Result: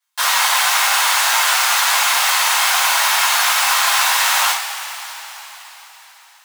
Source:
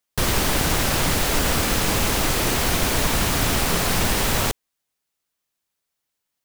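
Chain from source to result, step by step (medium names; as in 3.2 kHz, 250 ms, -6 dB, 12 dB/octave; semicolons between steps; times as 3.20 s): elliptic high-pass 810 Hz, stop band 80 dB; treble shelf 11 kHz -5.5 dB; two-slope reverb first 0.36 s, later 4.5 s, from -18 dB, DRR -10 dB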